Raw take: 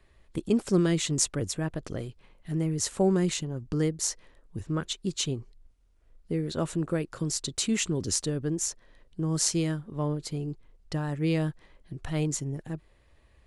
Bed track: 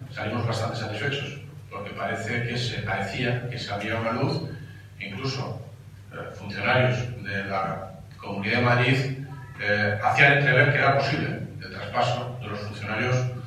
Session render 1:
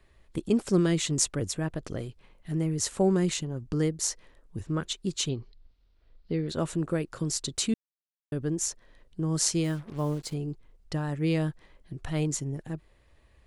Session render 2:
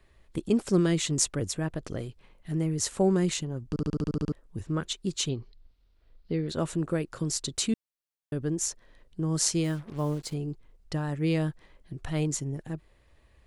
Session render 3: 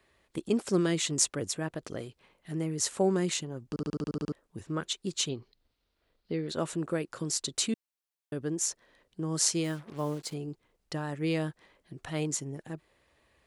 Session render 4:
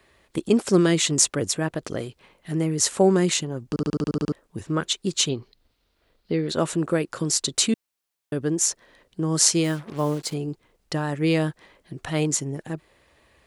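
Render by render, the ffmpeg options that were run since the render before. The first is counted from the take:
-filter_complex "[0:a]asettb=1/sr,asplit=3[a][b][c];[a]atrim=end=5.294[d];[b]atrim=start=5.29:end=6.49,asetpts=PTS-STARTPTS,afade=t=in:d=0.004:c=qsin,afade=t=out:st=1.196:d=0.004:c=qsin,highshelf=f=6.2k:t=q:w=3:g=-14[e];[c]atrim=start=6.486[f];[d][e]acrossfade=d=0.004:c1=hsin:c2=qsin[g];[g][f]acrossfade=d=0.004:c1=qsin:c2=hsin,asettb=1/sr,asplit=3[h][i][j];[h]atrim=end=9.644[k];[i]atrim=start=9.64:end=10.34,asetpts=PTS-STARTPTS,afade=t=in:d=0.004:c=qsin,afade=t=out:st=0.696:d=0.004:c=qsin,acrusher=bits=7:mix=0:aa=0.5[l];[j]atrim=start=10.336[m];[k][l]acrossfade=d=0.004:c1=hsin:c2=qsin[n];[n][m]acrossfade=d=0.004:c1=qsin:c2=hsin,asplit=3[o][p][q];[o]atrim=end=7.74,asetpts=PTS-STARTPTS,afade=t=out:st=7.736:d=0.004:c=hsin[r];[p]atrim=start=7.74:end=8.32,asetpts=PTS-STARTPTS,volume=0[s];[q]atrim=start=8.32,asetpts=PTS-STARTPTS,afade=t=in:d=0.004:c=hsin[t];[r][s][t]concat=n=3:v=0:a=1"
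-filter_complex "[0:a]asplit=10[a][b][c][d][e][f][g][h][i][j];[a]atrim=end=3.762[k];[b]atrim=start=3.688:end=3.762[l];[c]atrim=start=3.688:end=3.762[m];[d]atrim=start=3.688:end=3.762[n];[e]atrim=start=3.688:end=3.762[o];[f]atrim=start=3.688:end=3.762[p];[g]atrim=start=3.688:end=3.762[q];[h]atrim=start=3.688:end=3.762[r];[i]atrim=start=3.688:end=3.762[s];[j]atrim=start=4.318[t];[k][l]acrossfade=d=0.004:c1=hsin:c2=hsin[u];[u][m]acrossfade=d=0.004:c1=hsin:c2=hsin[v];[v][n]acrossfade=d=0.004:c1=hsin:c2=hsin[w];[w][o]acrossfade=d=0.004:c1=hsin:c2=hsin[x];[x][p]acrossfade=d=0.004:c1=hsin:c2=hsin[y];[y][q]acrossfade=d=0.004:c1=hsin:c2=hsin[z];[z][r]acrossfade=d=0.004:c1=hsin:c2=hsin[aa];[aa][s]acrossfade=d=0.004:c1=hsin:c2=hsin[ab];[ab][t]acrossfade=d=0.004:c1=hsin:c2=hsin"
-af "highpass=f=280:p=1"
-af "volume=8.5dB,alimiter=limit=-1dB:level=0:latency=1"

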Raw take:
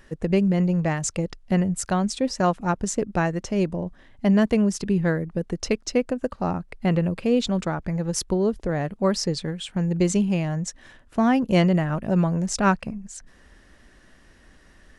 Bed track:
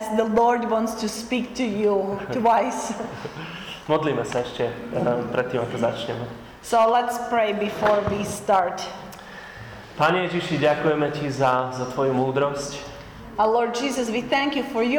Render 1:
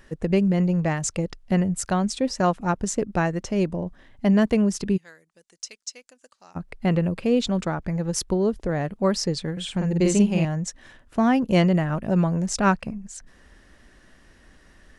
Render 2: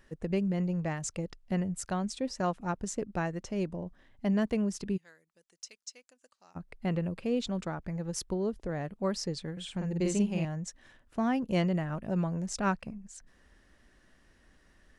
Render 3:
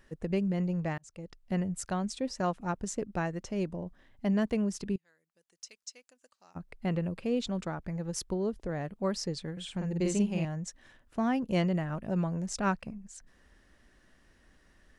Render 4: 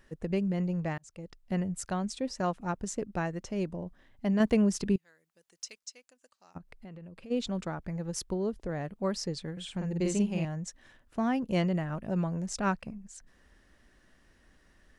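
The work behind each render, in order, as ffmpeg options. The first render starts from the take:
-filter_complex "[0:a]asplit=3[a][b][c];[a]afade=t=out:st=4.96:d=0.02[d];[b]bandpass=f=7.3k:t=q:w=1.5,afade=t=in:st=4.96:d=0.02,afade=t=out:st=6.55:d=0.02[e];[c]afade=t=in:st=6.55:d=0.02[f];[d][e][f]amix=inputs=3:normalize=0,asettb=1/sr,asplit=3[g][h][i];[g]atrim=end=9.524[j];[h]atrim=start=9.52:end=10.45,asetpts=PTS-STARTPTS,afade=t=in:d=0.004:c=qsin,afade=t=out:st=0.926:d=0.004:c=qsin,asplit=2[k][l];[l]adelay=49,volume=-2dB[m];[k][m]amix=inputs=2:normalize=0,atrim=end_sample=41013[n];[i]atrim=start=10.446[o];[j][n]acrossfade=d=0.004:c1=hsin:c2=qsin[p];[p][o]acrossfade=d=0.004:c1=qsin:c2=hsin"
-af "volume=-9.5dB"
-filter_complex "[0:a]asplit=3[a][b][c];[a]atrim=end=0.98,asetpts=PTS-STARTPTS,afade=t=out:st=0.976:d=0.004:c=hsin[d];[b]atrim=start=0.98:end=4.96,asetpts=PTS-STARTPTS,afade=t=in:d=0.59,afade=t=out:st=3.976:d=0.004:c=hsin:silence=0.141254[e];[c]atrim=start=4.96,asetpts=PTS-STARTPTS,afade=t=in:d=0.81:silence=0.141254[f];[d][e][f]concat=n=3:v=0:a=1"
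-filter_complex "[0:a]asettb=1/sr,asplit=3[a][b][c];[a]atrim=end=4.404[d];[b]atrim=start=4.4:end=5.79,asetpts=PTS-STARTPTS,afade=t=in:d=0.004:c=qsin,afade=t=out:st=1.386:d=0.004:c=qsin,acontrast=31[e];[c]atrim=start=5.786[f];[d][e]acrossfade=d=0.004:c1=hsin:c2=qsin[g];[g][f]acrossfade=d=0.004:c1=qsin:c2=hsin,asplit=3[h][i][j];[h]afade=t=out:st=6.57:d=0.02[k];[i]acompressor=threshold=-46dB:ratio=4:attack=3.2:release=140:knee=1:detection=peak,afade=t=in:st=6.57:d=0.02,afade=t=out:st=7.3:d=0.02[l];[j]afade=t=in:st=7.3:d=0.02[m];[k][l][m]amix=inputs=3:normalize=0"

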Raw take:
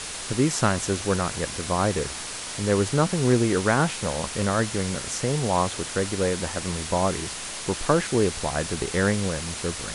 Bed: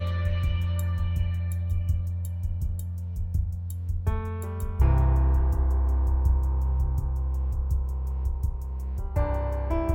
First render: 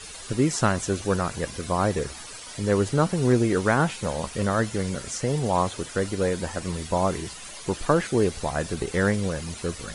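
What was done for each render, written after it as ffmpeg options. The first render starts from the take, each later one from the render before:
-af "afftdn=nr=12:nf=-35"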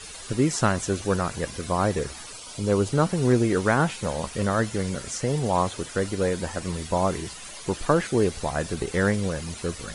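-filter_complex "[0:a]asettb=1/sr,asplit=3[a][b][c];[a]atrim=end=2.324[d];[b]atrim=start=2.32:end=2.93,asetpts=PTS-STARTPTS,afade=t=in:d=0.004:c=qsin,afade=t=out:st=0.606:d=0.004:c=qsin,equalizer=f=1.8k:t=o:w=0.28:g=-13.5[e];[c]atrim=start=2.926[f];[d][e]acrossfade=d=0.004:c1=hsin:c2=qsin[g];[g][f]acrossfade=d=0.004:c1=qsin:c2=hsin"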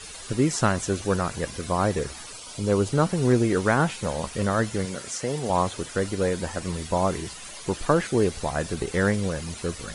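-filter_complex "[0:a]asettb=1/sr,asplit=3[a][b][c];[a]atrim=end=4.854[d];[b]atrim=start=4.85:end=5.5,asetpts=PTS-STARTPTS,afade=t=in:d=0.004:c=qsin,afade=t=out:st=0.646:d=0.004:c=qsin,highpass=f=250:p=1[e];[c]atrim=start=5.496[f];[d][e]acrossfade=d=0.004:c1=hsin:c2=qsin[g];[g][f]acrossfade=d=0.004:c1=qsin:c2=hsin"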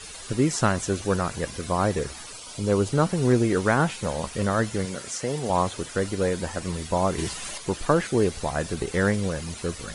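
-filter_complex "[0:a]asettb=1/sr,asplit=3[a][b][c];[a]atrim=end=7.184[d];[b]atrim=start=7.18:end=7.58,asetpts=PTS-STARTPTS,afade=t=in:d=0.004:c=qsin,afade=t=out:st=0.396:d=0.004:c=qsin,acontrast=34[e];[c]atrim=start=7.576[f];[d][e]acrossfade=d=0.004:c1=hsin:c2=qsin[g];[g][f]acrossfade=d=0.004:c1=qsin:c2=hsin"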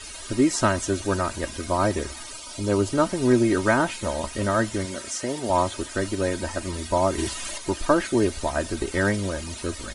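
-af "aecho=1:1:3.2:0.69"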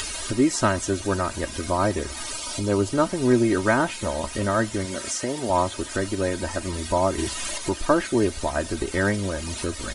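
-af "acompressor=mode=upward:threshold=-23dB:ratio=2.5"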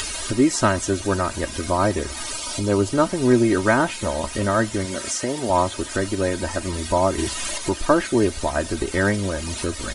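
-af "volume=2.5dB"

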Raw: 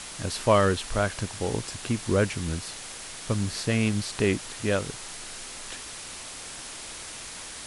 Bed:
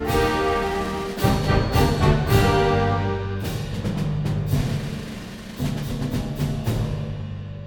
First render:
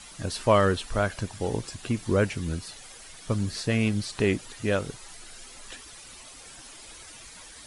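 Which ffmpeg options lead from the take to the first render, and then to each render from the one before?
-af "afftdn=nr=11:nf=-40"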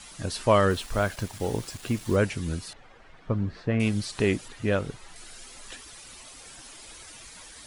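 -filter_complex "[0:a]asettb=1/sr,asplit=3[a][b][c];[a]atrim=end=0.704[d];[b]atrim=start=0.7:end=2.16,asetpts=PTS-STARTPTS,afade=t=in:d=0.004:c=qsin,afade=t=out:st=1.456:d=0.004:c=qsin,acrusher=bits=6:mix=0:aa=0.5[e];[c]atrim=start=2.156[f];[d][e]acrossfade=d=0.004:c1=hsin:c2=qsin[g];[g][f]acrossfade=d=0.004:c1=qsin:c2=hsin,asettb=1/sr,asplit=3[h][i][j];[h]atrim=end=2.734[k];[i]atrim=start=2.73:end=3.8,asetpts=PTS-STARTPTS,afade=t=in:d=0.004:c=qsin,afade=t=out:st=1.066:d=0.004:c=qsin,lowpass=1.7k[l];[j]atrim=start=3.796[m];[k][l]acrossfade=d=0.004:c1=hsin:c2=qsin[n];[n][m]acrossfade=d=0.004:c1=qsin:c2=hsin,asettb=1/sr,asplit=3[o][p][q];[o]atrim=end=4.484[r];[p]atrim=start=4.48:end=5.16,asetpts=PTS-STARTPTS,afade=t=in:d=0.004:c=qsin,afade=t=out:st=0.676:d=0.004:c=qsin,bass=f=250:g=2,treble=f=4k:g=-8[s];[q]atrim=start=5.156[t];[r][s]acrossfade=d=0.004:c1=hsin:c2=qsin[u];[u][t]acrossfade=d=0.004:c1=qsin:c2=hsin"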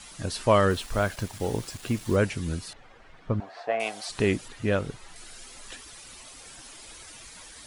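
-filter_complex "[0:a]asettb=1/sr,asplit=3[a][b][c];[a]atrim=end=3.404[d];[b]atrim=start=3.4:end=4.09,asetpts=PTS-STARTPTS,afade=t=in:d=0.004:c=qsin,afade=t=out:st=0.686:d=0.004:c=qsin,highpass=f=710:t=q:w=7.7[e];[c]atrim=start=4.086[f];[d][e]acrossfade=d=0.004:c1=hsin:c2=qsin[g];[g][f]acrossfade=d=0.004:c1=qsin:c2=hsin"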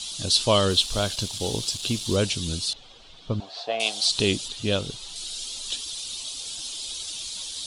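-af "lowpass=9.9k,highshelf=f=2.6k:t=q:w=3:g=11"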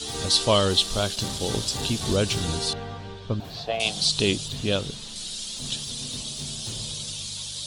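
-filter_complex "[1:a]volume=-15dB[a];[0:a][a]amix=inputs=2:normalize=0"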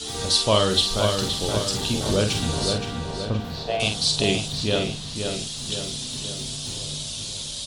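-filter_complex "[0:a]asplit=2[a][b];[b]adelay=47,volume=-6dB[c];[a][c]amix=inputs=2:normalize=0,asplit=2[d][e];[e]adelay=521,lowpass=f=3.5k:p=1,volume=-5.5dB,asplit=2[f][g];[g]adelay=521,lowpass=f=3.5k:p=1,volume=0.53,asplit=2[h][i];[i]adelay=521,lowpass=f=3.5k:p=1,volume=0.53,asplit=2[j][k];[k]adelay=521,lowpass=f=3.5k:p=1,volume=0.53,asplit=2[l][m];[m]adelay=521,lowpass=f=3.5k:p=1,volume=0.53,asplit=2[n][o];[o]adelay=521,lowpass=f=3.5k:p=1,volume=0.53,asplit=2[p][q];[q]adelay=521,lowpass=f=3.5k:p=1,volume=0.53[r];[d][f][h][j][l][n][p][r]amix=inputs=8:normalize=0"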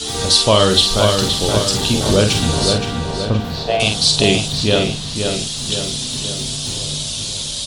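-af "volume=8dB,alimiter=limit=-1dB:level=0:latency=1"

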